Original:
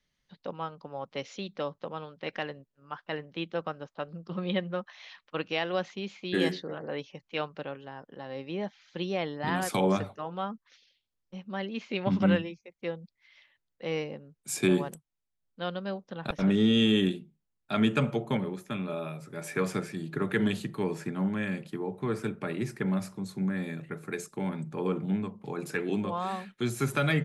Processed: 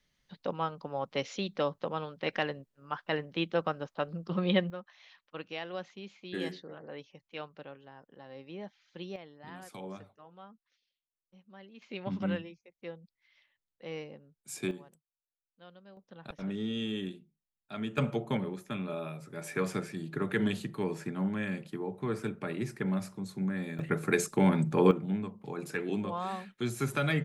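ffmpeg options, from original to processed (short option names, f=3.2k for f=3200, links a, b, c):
-af "asetnsamples=n=441:p=0,asendcmd='4.7 volume volume -9dB;9.16 volume volume -17.5dB;11.82 volume volume -8.5dB;14.71 volume volume -20dB;15.97 volume volume -11.5dB;17.98 volume volume -2.5dB;23.79 volume volume 8dB;24.91 volume volume -3dB',volume=3dB"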